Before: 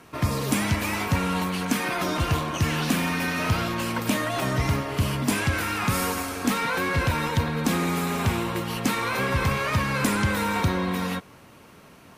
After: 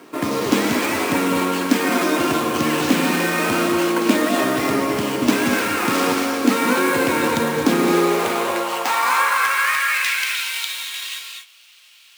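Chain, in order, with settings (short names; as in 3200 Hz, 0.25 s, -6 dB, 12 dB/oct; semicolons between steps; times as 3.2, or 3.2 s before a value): sample-rate reducer 11000 Hz, jitter 20%; high-pass sweep 300 Hz -> 3200 Hz, 7.74–10.47; non-linear reverb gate 0.27 s rising, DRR 3 dB; gain +4 dB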